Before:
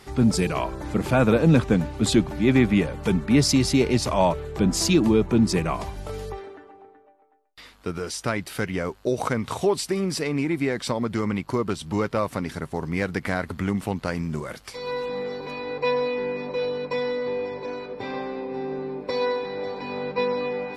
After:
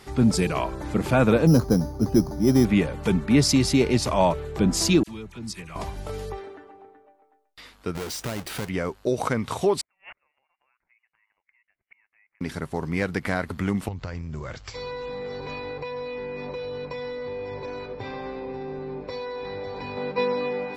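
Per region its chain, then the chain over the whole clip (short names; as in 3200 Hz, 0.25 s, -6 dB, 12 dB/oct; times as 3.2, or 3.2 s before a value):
1.47–2.65 LPF 1100 Hz + careless resampling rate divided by 8×, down filtered, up hold + mismatched tape noise reduction decoder only
5.03–5.76 passive tone stack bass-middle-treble 5-5-5 + dispersion lows, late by 45 ms, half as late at 1700 Hz
7.95–8.69 half-waves squared off + compressor 2.5:1, threshold -31 dBFS
9.81–12.41 resonant high-pass 900 Hz, resonance Q 2.8 + flipped gate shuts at -24 dBFS, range -41 dB + inverted band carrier 3100 Hz
13.88–19.97 resonant low shelf 140 Hz +9.5 dB, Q 1.5 + compressor 10:1, threshold -29 dBFS + brick-wall FIR low-pass 7800 Hz
whole clip: dry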